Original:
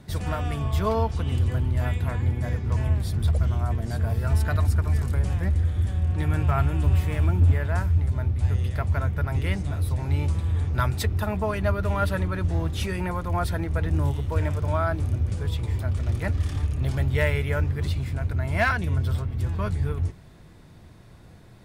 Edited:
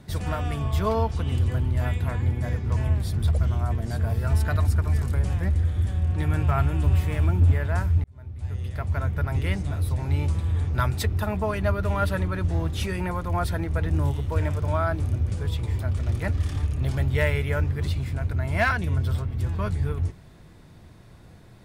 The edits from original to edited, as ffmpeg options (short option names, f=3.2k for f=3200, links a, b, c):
-filter_complex "[0:a]asplit=2[a][b];[a]atrim=end=8.04,asetpts=PTS-STARTPTS,afade=t=out:st=8.036:d=0.004:c=hsin[c];[b]atrim=start=8.04,asetpts=PTS-STARTPTS,afade=t=in:d=1.12[d];[c][d]concat=n=2:v=0:a=1"